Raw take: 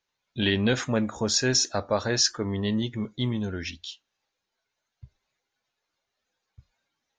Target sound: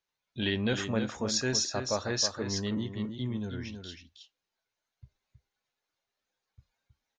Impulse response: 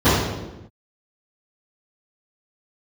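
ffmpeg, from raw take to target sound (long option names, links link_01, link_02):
-filter_complex "[0:a]asettb=1/sr,asplit=3[link_01][link_02][link_03];[link_01]atrim=end=2.774[link_04];[link_02]atrim=start=2.77:end=3.89,asetpts=PTS-STARTPTS,afade=type=in:duration=0.004:curve=qsin,afade=type=out:start_time=1.116:duration=0.004:curve=qsin,acrossover=split=420[link_05][link_06];[link_06]acompressor=threshold=-38dB:ratio=4[link_07];[link_05][link_07]amix=inputs=2:normalize=0[link_08];[link_03]atrim=start=3.886[link_09];[link_04][link_08]acrossfade=duration=0.004:curve1=hsin:curve2=qsin[link_10];[link_10][link_09]acrossfade=duration=0.004:curve1=qsin:curve2=hsin,aecho=1:1:319:0.422,volume=-6dB"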